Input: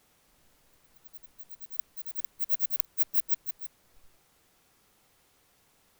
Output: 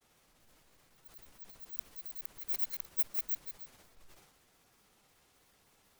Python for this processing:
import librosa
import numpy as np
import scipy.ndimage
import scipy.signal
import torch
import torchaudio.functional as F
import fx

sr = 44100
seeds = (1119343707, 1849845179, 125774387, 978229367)

y = fx.granulator(x, sr, seeds[0], grain_ms=114.0, per_s=16.0, spray_ms=10.0, spread_st=0)
y = fx.transient(y, sr, attack_db=-2, sustain_db=8)